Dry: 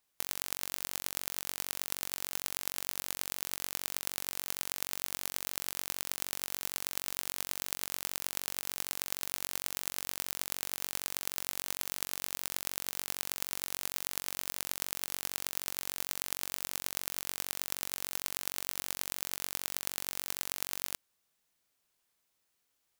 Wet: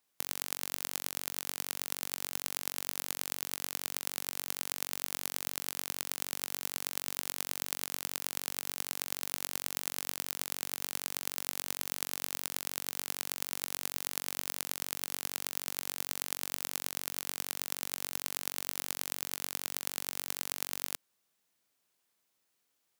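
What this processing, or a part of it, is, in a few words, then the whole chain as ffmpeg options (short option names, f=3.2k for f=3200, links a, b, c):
filter by subtraction: -filter_complex "[0:a]asplit=2[a][b];[b]lowpass=210,volume=-1[c];[a][c]amix=inputs=2:normalize=0"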